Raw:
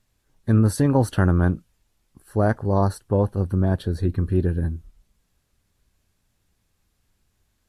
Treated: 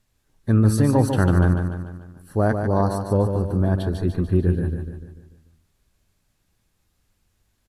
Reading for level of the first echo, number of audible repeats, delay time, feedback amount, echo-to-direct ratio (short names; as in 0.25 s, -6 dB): -6.5 dB, 5, 0.147 s, 50%, -5.5 dB